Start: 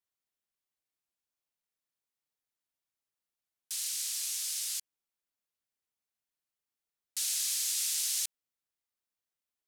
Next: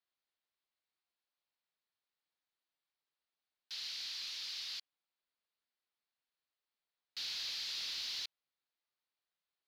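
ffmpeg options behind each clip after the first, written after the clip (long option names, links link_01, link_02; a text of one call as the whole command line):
ffmpeg -i in.wav -filter_complex "[0:a]highshelf=frequency=6100:width_type=q:width=3:gain=-12.5,asplit=2[link_01][link_02];[link_02]highpass=frequency=720:poles=1,volume=11dB,asoftclip=type=tanh:threshold=-21.5dB[link_03];[link_01][link_03]amix=inputs=2:normalize=0,lowpass=frequency=1800:poles=1,volume=-6dB,volume=-3.5dB" out.wav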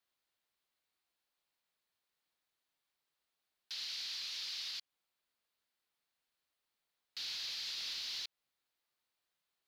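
ffmpeg -i in.wav -af "alimiter=level_in=15dB:limit=-24dB:level=0:latency=1:release=168,volume=-15dB,volume=5dB" out.wav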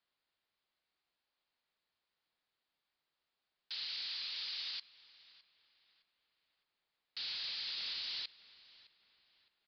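ffmpeg -i in.wav -filter_complex "[0:a]asplit=2[link_01][link_02];[link_02]adelay=612,lowpass=frequency=2800:poles=1,volume=-17dB,asplit=2[link_03][link_04];[link_04]adelay=612,lowpass=frequency=2800:poles=1,volume=0.46,asplit=2[link_05][link_06];[link_06]adelay=612,lowpass=frequency=2800:poles=1,volume=0.46,asplit=2[link_07][link_08];[link_08]adelay=612,lowpass=frequency=2800:poles=1,volume=0.46[link_09];[link_01][link_03][link_05][link_07][link_09]amix=inputs=5:normalize=0,aresample=11025,aresample=44100,volume=1dB" out.wav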